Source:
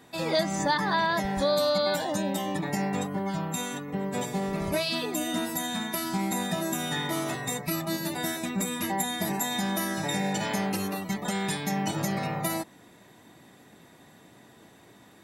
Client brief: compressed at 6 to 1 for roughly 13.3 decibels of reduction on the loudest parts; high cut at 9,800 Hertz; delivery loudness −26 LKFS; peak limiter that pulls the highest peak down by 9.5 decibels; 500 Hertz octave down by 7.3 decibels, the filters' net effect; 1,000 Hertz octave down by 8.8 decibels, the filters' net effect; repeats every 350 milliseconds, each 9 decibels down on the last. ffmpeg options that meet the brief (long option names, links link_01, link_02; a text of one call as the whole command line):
ffmpeg -i in.wav -af "lowpass=9800,equalizer=frequency=500:width_type=o:gain=-6.5,equalizer=frequency=1000:width_type=o:gain=-9,acompressor=threshold=-42dB:ratio=6,alimiter=level_in=15dB:limit=-24dB:level=0:latency=1,volume=-15dB,aecho=1:1:350|700|1050|1400:0.355|0.124|0.0435|0.0152,volume=21dB" out.wav